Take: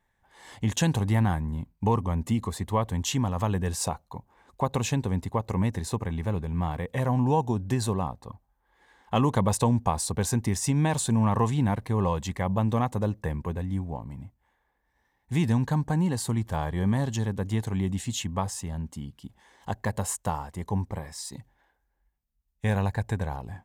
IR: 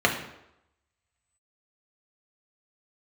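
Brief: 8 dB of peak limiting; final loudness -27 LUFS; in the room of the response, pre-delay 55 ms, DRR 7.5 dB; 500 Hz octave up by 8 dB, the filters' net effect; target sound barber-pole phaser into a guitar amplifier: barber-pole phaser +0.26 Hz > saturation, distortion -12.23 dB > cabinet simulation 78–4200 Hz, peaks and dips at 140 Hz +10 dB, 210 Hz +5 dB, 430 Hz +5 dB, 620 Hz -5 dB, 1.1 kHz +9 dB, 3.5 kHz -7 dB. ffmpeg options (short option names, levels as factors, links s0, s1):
-filter_complex "[0:a]equalizer=f=500:t=o:g=7,alimiter=limit=0.158:level=0:latency=1,asplit=2[s0][s1];[1:a]atrim=start_sample=2205,adelay=55[s2];[s1][s2]afir=irnorm=-1:irlink=0,volume=0.0631[s3];[s0][s3]amix=inputs=2:normalize=0,asplit=2[s4][s5];[s5]afreqshift=0.26[s6];[s4][s6]amix=inputs=2:normalize=1,asoftclip=threshold=0.0562,highpass=78,equalizer=f=140:t=q:w=4:g=10,equalizer=f=210:t=q:w=4:g=5,equalizer=f=430:t=q:w=4:g=5,equalizer=f=620:t=q:w=4:g=-5,equalizer=f=1100:t=q:w=4:g=9,equalizer=f=3500:t=q:w=4:g=-7,lowpass=f=4200:w=0.5412,lowpass=f=4200:w=1.3066,volume=1.33"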